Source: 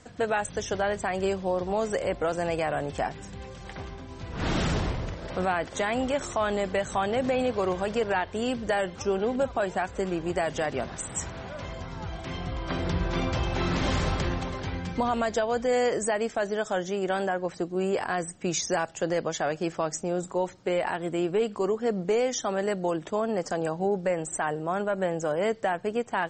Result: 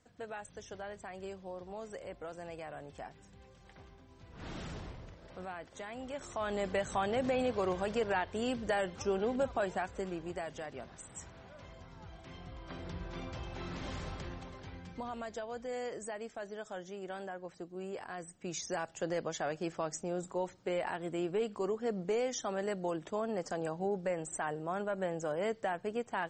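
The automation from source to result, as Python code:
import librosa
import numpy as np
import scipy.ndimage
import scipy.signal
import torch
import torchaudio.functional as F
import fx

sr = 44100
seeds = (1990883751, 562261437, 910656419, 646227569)

y = fx.gain(x, sr, db=fx.line((5.97, -17.0), (6.67, -6.0), (9.64, -6.0), (10.67, -15.0), (18.1, -15.0), (19.03, -8.0)))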